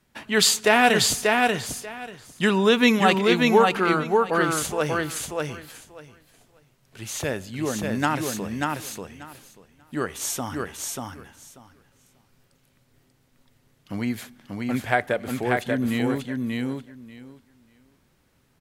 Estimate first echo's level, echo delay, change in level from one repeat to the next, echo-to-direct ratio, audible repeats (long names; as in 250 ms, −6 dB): −3.0 dB, 588 ms, −16.0 dB, −3.0 dB, 3